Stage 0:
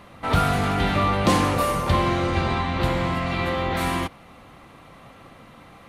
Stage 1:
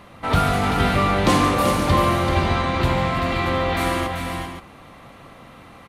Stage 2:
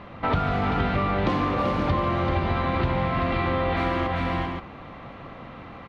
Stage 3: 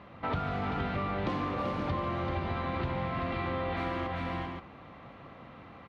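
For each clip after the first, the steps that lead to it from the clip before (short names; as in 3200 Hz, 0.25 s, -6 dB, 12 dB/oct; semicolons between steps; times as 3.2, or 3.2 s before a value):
tapped delay 0.147/0.386/0.525 s -11.5/-6/-10.5 dB; gain +1.5 dB
compressor, threshold -24 dBFS, peak gain reduction 11 dB; air absorption 260 m; gain +4 dB
HPF 54 Hz; gain -8.5 dB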